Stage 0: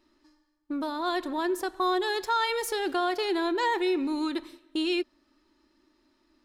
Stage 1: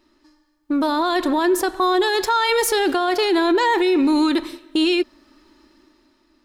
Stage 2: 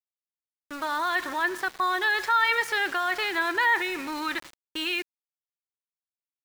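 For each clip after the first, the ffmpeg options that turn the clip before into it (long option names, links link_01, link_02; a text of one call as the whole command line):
ffmpeg -i in.wav -af "dynaudnorm=framelen=110:gausssize=13:maxgain=7.5dB,alimiter=limit=-18dB:level=0:latency=1:release=18,volume=6.5dB" out.wav
ffmpeg -i in.wav -af "bandpass=frequency=1800:width_type=q:width=2:csg=0,aeval=exprs='val(0)*gte(abs(val(0)),0.0106)':channel_layout=same,volume=2.5dB" out.wav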